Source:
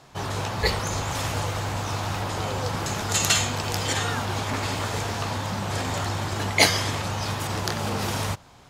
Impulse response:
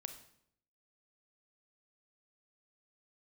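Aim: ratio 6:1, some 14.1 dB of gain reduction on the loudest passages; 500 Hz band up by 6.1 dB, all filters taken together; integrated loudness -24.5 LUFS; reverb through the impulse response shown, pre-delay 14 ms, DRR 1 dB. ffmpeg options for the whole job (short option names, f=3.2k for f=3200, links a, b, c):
-filter_complex "[0:a]equalizer=f=500:t=o:g=7.5,acompressor=threshold=-26dB:ratio=6,asplit=2[a][b];[1:a]atrim=start_sample=2205,adelay=14[c];[b][c]afir=irnorm=-1:irlink=0,volume=2.5dB[d];[a][d]amix=inputs=2:normalize=0,volume=3dB"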